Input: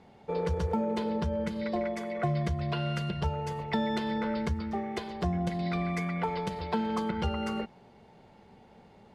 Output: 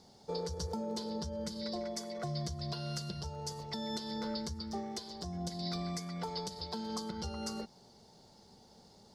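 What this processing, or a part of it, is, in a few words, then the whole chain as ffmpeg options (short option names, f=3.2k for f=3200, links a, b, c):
over-bright horn tweeter: -af "highshelf=f=3.5k:t=q:w=3:g=13,alimiter=limit=-22.5dB:level=0:latency=1:release=328,volume=-5dB"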